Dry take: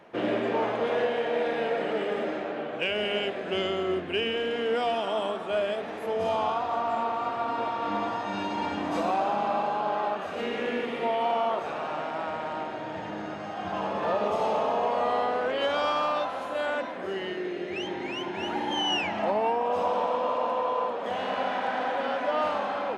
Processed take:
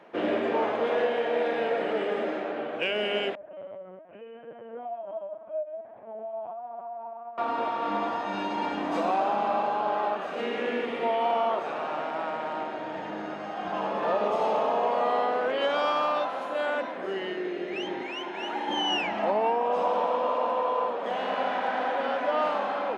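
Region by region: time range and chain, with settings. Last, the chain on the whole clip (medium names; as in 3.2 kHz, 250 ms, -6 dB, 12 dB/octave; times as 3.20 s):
3.35–7.38 s: ladder band-pass 690 Hz, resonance 55% + chorus 1.1 Hz, delay 15 ms, depth 4.3 ms + LPC vocoder at 8 kHz pitch kept
18.03–18.68 s: high-pass 460 Hz 6 dB/octave + band-stop 4.6 kHz, Q 14
whole clip: high-pass 200 Hz 12 dB/octave; treble shelf 5.4 kHz -7.5 dB; trim +1 dB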